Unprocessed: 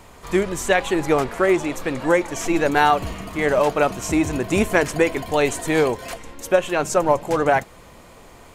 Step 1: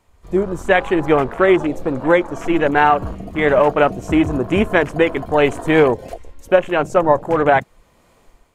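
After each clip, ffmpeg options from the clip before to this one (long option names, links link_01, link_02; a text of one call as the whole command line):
ffmpeg -i in.wav -af "afwtdn=0.0398,dynaudnorm=framelen=150:gausssize=5:maxgain=9dB" out.wav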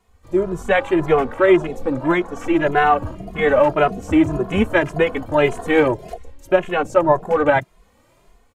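ffmpeg -i in.wav -filter_complex "[0:a]asplit=2[link_01][link_02];[link_02]adelay=2.4,afreqshift=1.8[link_03];[link_01][link_03]amix=inputs=2:normalize=1,volume=1dB" out.wav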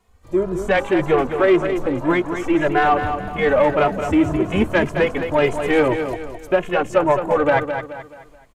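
ffmpeg -i in.wav -filter_complex "[0:a]asoftclip=type=tanh:threshold=-7dB,asplit=2[link_01][link_02];[link_02]aecho=0:1:214|428|642|856:0.398|0.151|0.0575|0.0218[link_03];[link_01][link_03]amix=inputs=2:normalize=0" out.wav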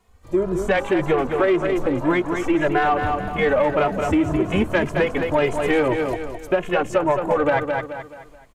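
ffmpeg -i in.wav -af "acompressor=threshold=-16dB:ratio=6,volume=1dB" out.wav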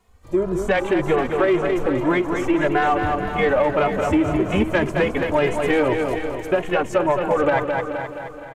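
ffmpeg -i in.wav -af "aecho=1:1:473|946|1419:0.316|0.0949|0.0285" out.wav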